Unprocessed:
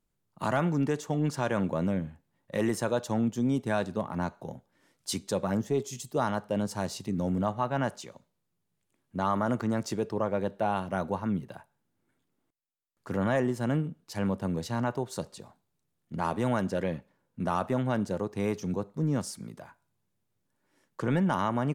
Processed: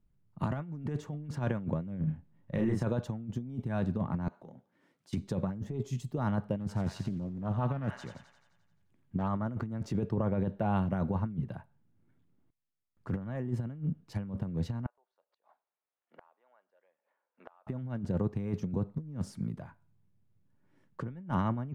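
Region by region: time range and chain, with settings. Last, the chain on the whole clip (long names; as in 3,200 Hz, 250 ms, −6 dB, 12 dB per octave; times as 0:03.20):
0:02.00–0:02.84: high-shelf EQ 7,900 Hz −6.5 dB + double-tracking delay 32 ms −3 dB + downward compressor 2.5 to 1, threshold −30 dBFS
0:04.28–0:05.13: high-pass filter 270 Hz + downward compressor 2.5 to 1, threshold −50 dBFS
0:06.60–0:09.28: delay with a high-pass on its return 87 ms, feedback 61%, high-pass 1,500 Hz, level −6 dB + highs frequency-modulated by the lows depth 0.33 ms
0:14.86–0:17.67: high-pass filter 600 Hz 24 dB per octave + gate with flip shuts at −36 dBFS, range −30 dB + high-frequency loss of the air 250 metres
whole clip: bass and treble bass +14 dB, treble −12 dB; compressor whose output falls as the input rises −24 dBFS, ratio −0.5; level −7.5 dB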